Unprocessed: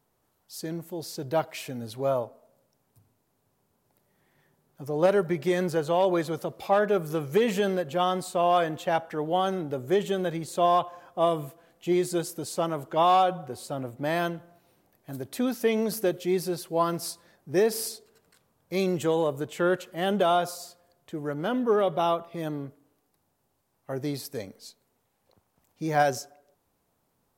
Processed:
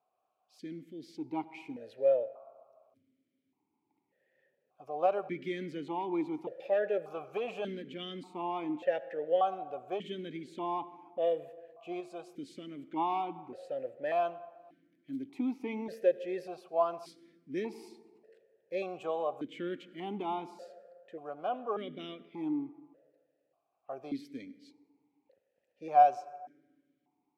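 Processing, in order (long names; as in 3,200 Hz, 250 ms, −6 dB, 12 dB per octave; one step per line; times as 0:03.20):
0:12.00–0:12.91: downward compressor 2 to 1, threshold −30 dBFS, peak gain reduction 5 dB
convolution reverb RT60 1.9 s, pre-delay 73 ms, DRR 17.5 dB
formant filter that steps through the vowels 1.7 Hz
level +3.5 dB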